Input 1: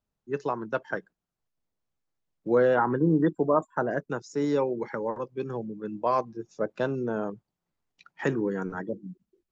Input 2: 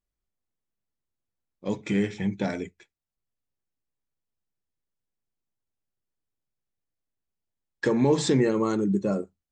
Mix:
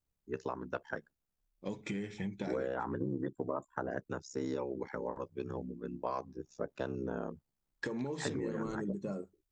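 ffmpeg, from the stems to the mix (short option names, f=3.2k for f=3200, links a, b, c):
-filter_complex "[0:a]lowshelf=f=83:g=9,crystalizer=i=1:c=0,aeval=exprs='val(0)*sin(2*PI*33*n/s)':c=same,volume=-4.5dB[a];[1:a]acompressor=threshold=-29dB:ratio=6,volume=-5dB[b];[a][b]amix=inputs=2:normalize=0,acompressor=threshold=-32dB:ratio=6"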